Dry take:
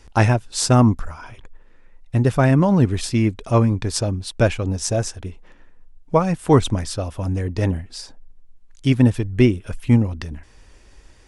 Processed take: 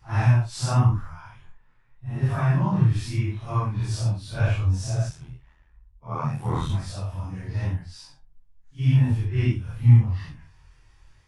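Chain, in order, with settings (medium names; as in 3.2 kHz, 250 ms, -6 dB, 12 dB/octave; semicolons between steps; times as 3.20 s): phase randomisation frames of 200 ms; chorus 0.87 Hz, delay 20 ms, depth 6.9 ms; 5.09–6.70 s: ring modulator 40 Hz; graphic EQ 125/250/500/1000/8000 Hz +11/-8/-9/+5/-5 dB; trim -5 dB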